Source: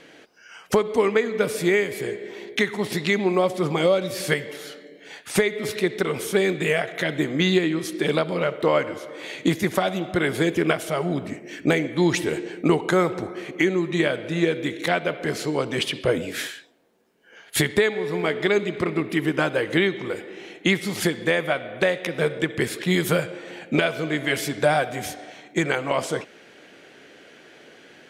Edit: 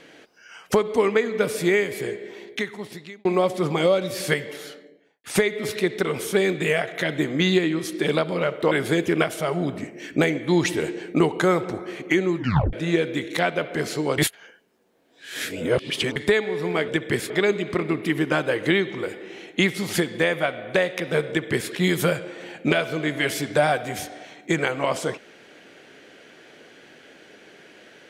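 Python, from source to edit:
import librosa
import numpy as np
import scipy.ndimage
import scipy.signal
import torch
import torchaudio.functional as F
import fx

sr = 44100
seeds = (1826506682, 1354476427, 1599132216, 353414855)

y = fx.studio_fade_out(x, sr, start_s=4.6, length_s=0.64)
y = fx.edit(y, sr, fx.fade_out_span(start_s=2.05, length_s=1.2),
    fx.cut(start_s=8.71, length_s=1.49),
    fx.tape_stop(start_s=13.86, length_s=0.36),
    fx.reverse_span(start_s=15.67, length_s=1.98),
    fx.duplicate(start_s=22.36, length_s=0.42, to_s=18.37), tone=tone)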